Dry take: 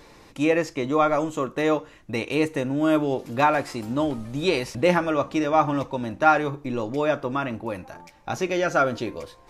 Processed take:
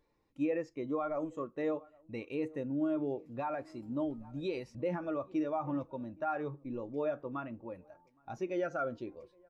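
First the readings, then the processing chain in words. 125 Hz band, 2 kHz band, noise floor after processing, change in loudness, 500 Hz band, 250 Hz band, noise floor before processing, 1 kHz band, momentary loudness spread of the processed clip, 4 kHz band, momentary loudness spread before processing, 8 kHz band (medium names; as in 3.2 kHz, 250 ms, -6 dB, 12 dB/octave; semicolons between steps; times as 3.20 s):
-14.0 dB, -18.5 dB, -71 dBFS, -13.0 dB, -12.5 dB, -11.0 dB, -51 dBFS, -17.0 dB, 10 LU, -22.5 dB, 11 LU, under -25 dB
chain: echo from a far wall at 140 m, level -20 dB; peak limiter -15 dBFS, peak gain reduction 9.5 dB; spectral contrast expander 1.5:1; trim -8.5 dB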